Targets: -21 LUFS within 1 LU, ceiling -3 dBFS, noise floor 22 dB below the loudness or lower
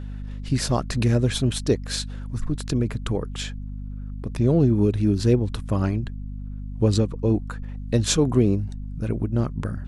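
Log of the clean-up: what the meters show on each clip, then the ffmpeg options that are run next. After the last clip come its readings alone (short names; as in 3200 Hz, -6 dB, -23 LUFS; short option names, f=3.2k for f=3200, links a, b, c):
hum 50 Hz; harmonics up to 250 Hz; hum level -30 dBFS; loudness -23.5 LUFS; peak -6.5 dBFS; loudness target -21.0 LUFS
-> -af "bandreject=f=50:t=h:w=4,bandreject=f=100:t=h:w=4,bandreject=f=150:t=h:w=4,bandreject=f=200:t=h:w=4,bandreject=f=250:t=h:w=4"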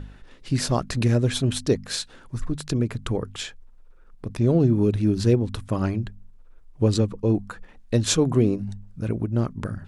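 hum none; loudness -24.0 LUFS; peak -8.0 dBFS; loudness target -21.0 LUFS
-> -af "volume=3dB"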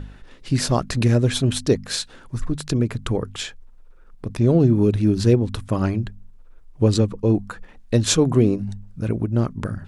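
loudness -21.0 LUFS; peak -5.0 dBFS; noise floor -46 dBFS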